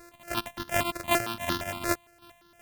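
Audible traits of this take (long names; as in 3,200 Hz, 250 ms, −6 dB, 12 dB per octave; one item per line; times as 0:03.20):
a buzz of ramps at a fixed pitch in blocks of 128 samples
chopped level 2.7 Hz, depth 60%, duty 25%
notches that jump at a steady rate 8.7 Hz 850–2,300 Hz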